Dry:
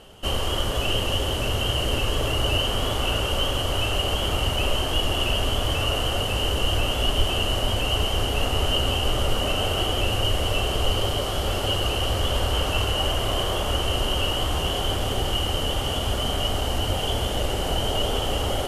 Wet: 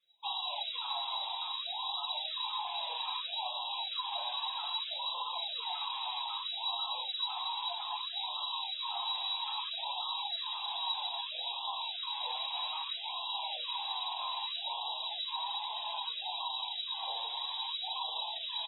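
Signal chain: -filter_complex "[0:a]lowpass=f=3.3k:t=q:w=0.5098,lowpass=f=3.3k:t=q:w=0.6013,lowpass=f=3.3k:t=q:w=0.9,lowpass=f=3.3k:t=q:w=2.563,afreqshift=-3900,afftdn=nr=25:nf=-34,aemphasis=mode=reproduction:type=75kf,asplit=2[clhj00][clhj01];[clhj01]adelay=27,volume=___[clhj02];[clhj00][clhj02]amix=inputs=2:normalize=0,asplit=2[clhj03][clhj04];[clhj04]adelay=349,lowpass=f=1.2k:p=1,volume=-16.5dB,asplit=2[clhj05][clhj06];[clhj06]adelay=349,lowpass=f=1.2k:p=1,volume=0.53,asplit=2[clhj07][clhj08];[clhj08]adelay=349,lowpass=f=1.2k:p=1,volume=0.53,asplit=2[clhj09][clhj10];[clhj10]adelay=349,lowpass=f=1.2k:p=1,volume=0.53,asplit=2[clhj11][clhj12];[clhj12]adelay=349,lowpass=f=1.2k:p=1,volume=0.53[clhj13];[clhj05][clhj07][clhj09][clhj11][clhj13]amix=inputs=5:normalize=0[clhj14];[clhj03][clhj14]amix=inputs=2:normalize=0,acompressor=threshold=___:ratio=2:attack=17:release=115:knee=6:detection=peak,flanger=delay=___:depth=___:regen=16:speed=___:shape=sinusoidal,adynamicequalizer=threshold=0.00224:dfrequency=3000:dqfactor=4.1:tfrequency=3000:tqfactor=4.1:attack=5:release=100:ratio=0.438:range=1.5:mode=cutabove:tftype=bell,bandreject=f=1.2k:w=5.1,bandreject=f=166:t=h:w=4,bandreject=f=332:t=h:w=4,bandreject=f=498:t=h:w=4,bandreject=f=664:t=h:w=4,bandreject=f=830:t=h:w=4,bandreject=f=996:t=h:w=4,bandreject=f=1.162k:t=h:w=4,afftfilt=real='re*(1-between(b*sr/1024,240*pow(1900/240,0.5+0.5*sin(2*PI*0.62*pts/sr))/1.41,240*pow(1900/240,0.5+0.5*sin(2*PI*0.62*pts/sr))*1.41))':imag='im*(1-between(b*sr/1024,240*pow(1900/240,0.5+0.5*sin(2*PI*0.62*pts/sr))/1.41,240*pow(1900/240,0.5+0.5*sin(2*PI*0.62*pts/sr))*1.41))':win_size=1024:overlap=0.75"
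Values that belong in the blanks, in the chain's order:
-10.5dB, -35dB, 5.8, 3, 0.38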